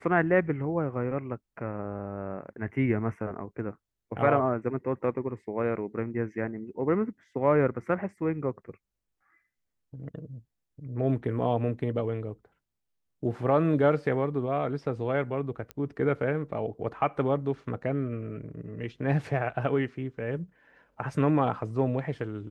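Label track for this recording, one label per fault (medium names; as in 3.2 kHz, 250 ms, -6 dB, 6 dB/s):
15.710000	15.710000	pop -22 dBFS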